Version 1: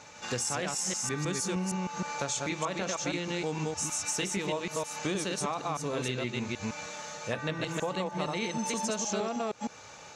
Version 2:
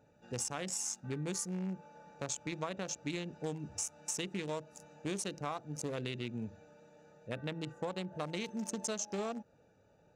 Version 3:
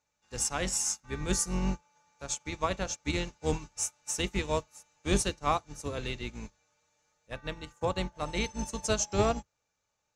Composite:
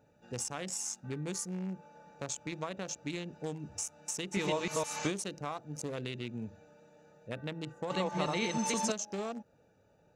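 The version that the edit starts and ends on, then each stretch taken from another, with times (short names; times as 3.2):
2
4.34–5.1 from 1, crossfade 0.06 s
7.9–8.92 from 1
not used: 3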